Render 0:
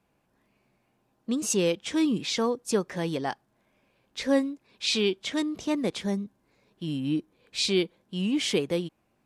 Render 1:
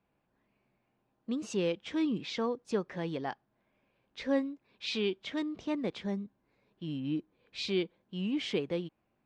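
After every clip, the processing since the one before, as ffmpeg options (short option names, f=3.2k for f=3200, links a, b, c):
-af "lowpass=3.6k,volume=-6dB"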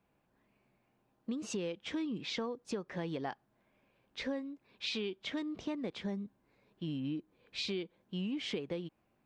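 -af "acompressor=threshold=-36dB:ratio=10,volume=2dB"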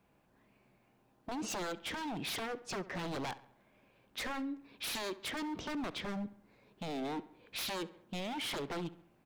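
-filter_complex "[0:a]aeval=exprs='0.0119*(abs(mod(val(0)/0.0119+3,4)-2)-1)':c=same,asplit=2[a][b];[b]adelay=68,lowpass=f=3.7k:p=1,volume=-17dB,asplit=2[c][d];[d]adelay=68,lowpass=f=3.7k:p=1,volume=0.52,asplit=2[e][f];[f]adelay=68,lowpass=f=3.7k:p=1,volume=0.52,asplit=2[g][h];[h]adelay=68,lowpass=f=3.7k:p=1,volume=0.52,asplit=2[i][j];[j]adelay=68,lowpass=f=3.7k:p=1,volume=0.52[k];[a][c][e][g][i][k]amix=inputs=6:normalize=0,volume=5dB"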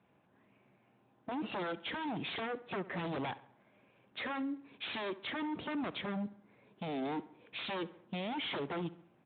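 -af "volume=1dB" -ar 8000 -c:a libspeex -b:a 24k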